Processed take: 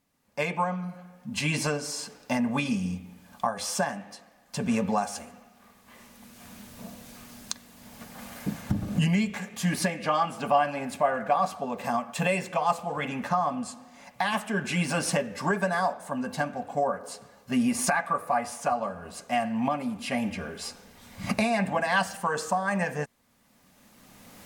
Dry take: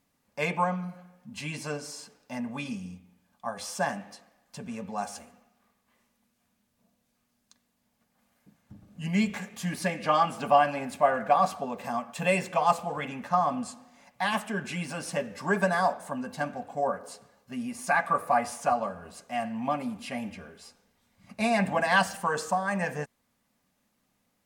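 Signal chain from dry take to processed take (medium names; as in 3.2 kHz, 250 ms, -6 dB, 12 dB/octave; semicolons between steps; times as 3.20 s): recorder AGC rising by 16 dB/s; trim -2 dB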